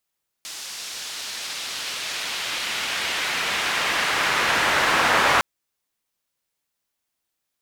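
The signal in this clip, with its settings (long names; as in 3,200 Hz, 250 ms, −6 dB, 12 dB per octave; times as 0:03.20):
filter sweep on noise pink, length 4.96 s bandpass, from 5,600 Hz, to 1,300 Hz, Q 1, exponential, gain ramp +17 dB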